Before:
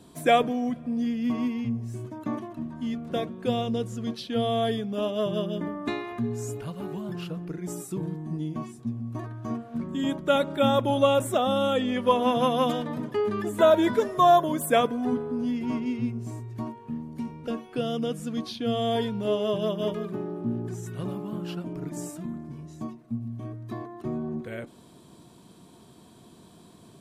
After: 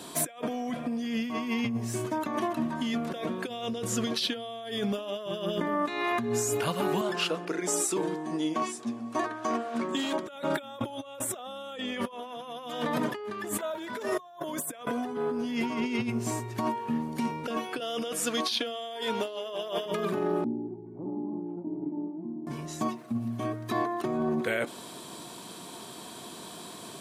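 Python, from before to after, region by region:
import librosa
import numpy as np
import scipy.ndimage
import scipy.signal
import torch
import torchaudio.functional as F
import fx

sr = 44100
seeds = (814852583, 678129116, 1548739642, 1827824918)

y = fx.chain(x, sr, fx.cheby1_bandpass(low_hz=320.0, high_hz=8300.0, order=2),
    fx.hum_notches(base_hz=50, count=9),
    fx.clip_hard(threshold_db=-27.5), at=(7.01, 10.27))
y = fx.chain(y, sr, fx.over_compress(threshold_db=-23.0, ratio=-0.5),
    fx.clip_hard(threshold_db=-19.0), at=(13.31, 14.03))
y = fx.chain(y, sr, fx.highpass(hz=340.0, slope=12),
    fx.echo_single(ms=807, db=-17.0), at=(17.8, 19.86))
y = fx.chain(y, sr, fx.formant_cascade(vowel='u'),
    fx.air_absorb(metres=400.0),
    fx.echo_single(ms=717, db=-13.0), at=(20.44, 22.47))
y = fx.highpass(y, sr, hz=790.0, slope=6)
y = fx.over_compress(y, sr, threshold_db=-42.0, ratio=-1.0)
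y = F.gain(torch.from_numpy(y), 8.5).numpy()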